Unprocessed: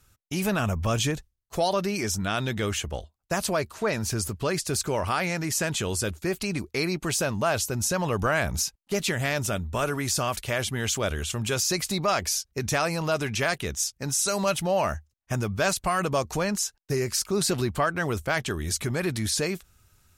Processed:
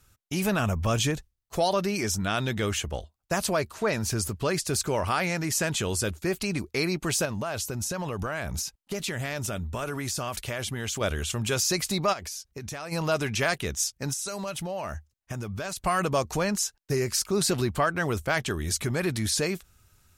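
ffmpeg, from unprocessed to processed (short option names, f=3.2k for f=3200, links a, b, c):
-filter_complex "[0:a]asettb=1/sr,asplit=3[a][b][c];[a]atrim=end=7.254[d];[b]atrim=start=7.25:end=11.01,asetpts=PTS-STARTPTS,afade=t=in:d=0.004:c=qsin,afade=t=out:st=3.756:d=0.004:c=qsin,acompressor=threshold=-27dB:ratio=6:attack=3.2:release=140:knee=1:detection=peak[e];[c]atrim=start=11.006[f];[d][e]acrossfade=d=0.004:c1=hsin:c2=qsin[g];[g][f]acrossfade=d=0.004:c1=qsin:c2=hsin,asplit=3[h][i][j];[h]afade=t=out:st=12.12:d=0.02[k];[i]acompressor=threshold=-35dB:ratio=4:attack=3.2:release=140:knee=1:detection=peak,afade=t=in:st=12.12:d=0.02,afade=t=out:st=12.91:d=0.02[l];[j]afade=t=in:st=12.91:d=0.02[m];[k][l][m]amix=inputs=3:normalize=0,asettb=1/sr,asplit=3[n][o][p];[n]atrim=end=14.134[q];[o]atrim=start=14.13:end=15.83,asetpts=PTS-STARTPTS,afade=t=in:d=0.004:c=qsin,afade=t=out:st=1.696:d=0.004:c=qsin,acompressor=threshold=-30dB:ratio=5:attack=3.2:release=140:knee=1:detection=peak[r];[p]atrim=start=15.826[s];[q][r]acrossfade=d=0.004:c1=hsin:c2=qsin[t];[t][s]acrossfade=d=0.004:c1=qsin:c2=hsin"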